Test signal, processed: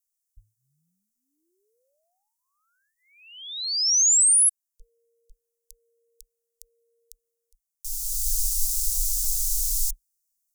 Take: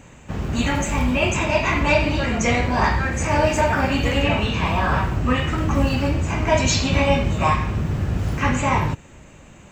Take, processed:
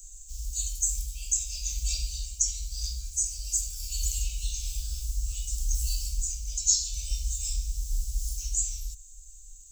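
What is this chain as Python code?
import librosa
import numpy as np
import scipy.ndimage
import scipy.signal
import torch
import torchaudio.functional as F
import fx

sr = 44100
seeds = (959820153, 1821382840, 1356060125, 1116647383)

y = scipy.signal.sosfilt(scipy.signal.cheby2(4, 60, [110.0, 2000.0], 'bandstop', fs=sr, output='sos'), x)
y = fx.rider(y, sr, range_db=4, speed_s=0.5)
y = y * librosa.db_to_amplitude(8.5)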